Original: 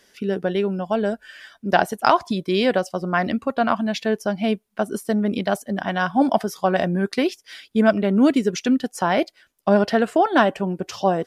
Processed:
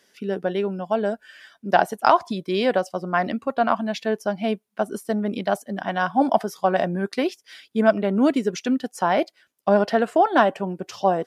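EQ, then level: HPF 110 Hz; dynamic EQ 800 Hz, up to +5 dB, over -28 dBFS, Q 0.8; -4.0 dB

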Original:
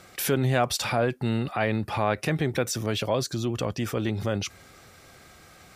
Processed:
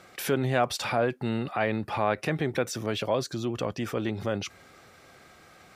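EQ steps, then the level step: low shelf 120 Hz -10.5 dB; high shelf 4300 Hz -8 dB; 0.0 dB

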